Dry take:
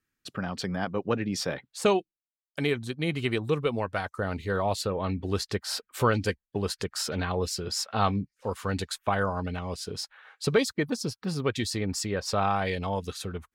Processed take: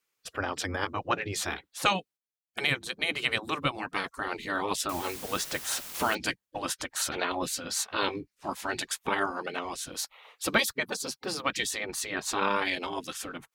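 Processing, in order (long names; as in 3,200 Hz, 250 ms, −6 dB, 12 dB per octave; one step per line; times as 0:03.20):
gate on every frequency bin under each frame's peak −10 dB weak
0:04.89–0:06.15: bit-depth reduction 8 bits, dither triangular
0:09.92–0:10.71: parametric band 13,000 Hz +8.5 dB 0.39 octaves
level +6 dB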